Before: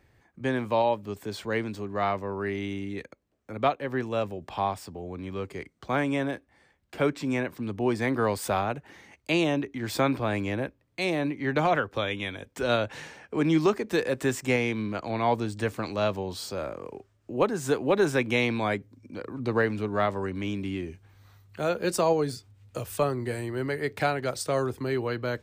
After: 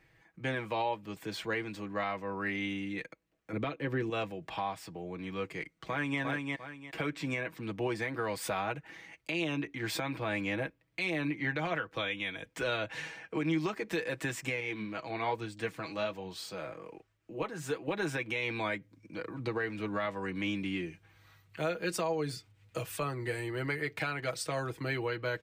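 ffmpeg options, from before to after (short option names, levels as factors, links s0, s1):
-filter_complex "[0:a]asettb=1/sr,asplit=3[s0][s1][s2];[s0]atrim=end=3.534[s3];[s1]atrim=start=3.53:end=4.1,asetpts=PTS-STARTPTS,afade=t=in:d=0.004:c=qsin,afade=t=out:st=0.566:d=0.004:c=qsin,lowshelf=f=520:t=q:w=1.5:g=7[s4];[s2]atrim=start=4.096[s5];[s3][s4]acrossfade=d=0.004:c1=hsin:c2=qsin[s6];[s6][s5]acrossfade=d=0.004:c1=qsin:c2=hsin,asplit=2[s7][s8];[s8]afade=t=in:st=5.51:d=0.01,afade=t=out:st=6.2:d=0.01,aecho=0:1:350|700|1050:0.530884|0.132721|0.0331803[s9];[s7][s9]amix=inputs=2:normalize=0,asettb=1/sr,asplit=3[s10][s11][s12];[s10]atrim=end=14.604[s13];[s11]atrim=start=14.6:end=17.88,asetpts=PTS-STARTPTS,afade=t=in:d=0.004:c=qsin,afade=t=out:st=3.276:d=0.004:c=qsin,flanger=delay=0.5:depth=7.8:regen=58:speed=1.2:shape=triangular[s14];[s12]atrim=start=17.876[s15];[s13][s14]acrossfade=d=0.004:c1=hsin:c2=qsin[s16];[s16][s15]acrossfade=d=0.004:c1=qsin:c2=hsin,equalizer=f=2300:w=0.94:g=7.5,aecho=1:1:6.2:0.64,alimiter=limit=0.133:level=0:latency=1:release=250,volume=0.531"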